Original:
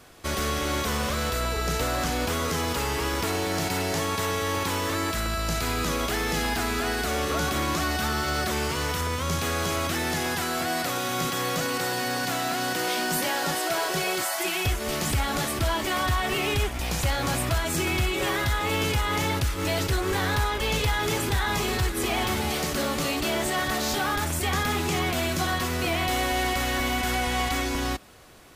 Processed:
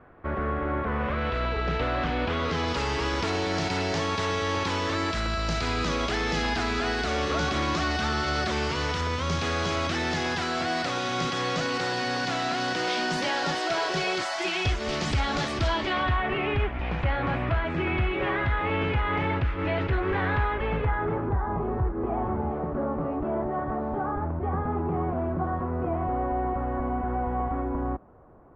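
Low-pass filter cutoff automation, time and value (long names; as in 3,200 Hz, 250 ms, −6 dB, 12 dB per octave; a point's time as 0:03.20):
low-pass filter 24 dB per octave
0:00.81 1,700 Hz
0:01.40 3,300 Hz
0:02.24 3,300 Hz
0:02.80 5,600 Hz
0:15.67 5,600 Hz
0:16.24 2,500 Hz
0:20.43 2,500 Hz
0:21.43 1,100 Hz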